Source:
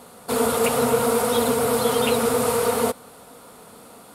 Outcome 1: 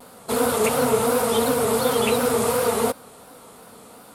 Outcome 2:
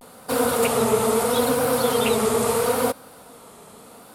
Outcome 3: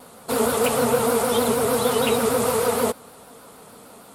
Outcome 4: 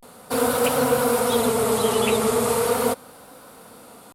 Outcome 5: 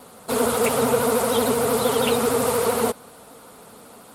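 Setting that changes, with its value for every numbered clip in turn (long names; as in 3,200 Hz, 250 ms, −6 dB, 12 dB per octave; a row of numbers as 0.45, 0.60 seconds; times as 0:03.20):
pitch vibrato, speed: 2.8, 0.76, 6.5, 0.37, 13 Hertz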